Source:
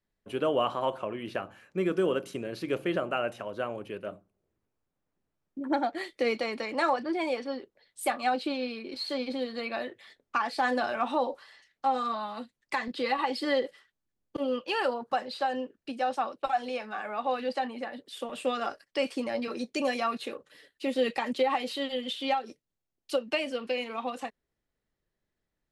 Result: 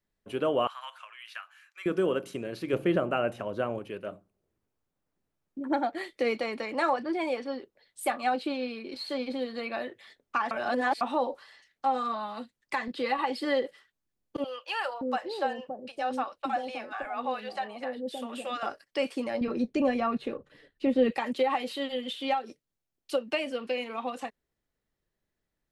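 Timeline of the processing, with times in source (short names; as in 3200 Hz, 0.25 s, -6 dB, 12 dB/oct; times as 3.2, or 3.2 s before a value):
0.67–1.86 HPF 1300 Hz 24 dB/oct
2.73–3.79 low shelf 450 Hz +7 dB
10.51–11.01 reverse
14.44–18.63 bands offset in time highs, lows 0.57 s, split 580 Hz
19.41–21.12 RIAA curve playback
whole clip: dynamic EQ 5300 Hz, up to -4 dB, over -48 dBFS, Q 1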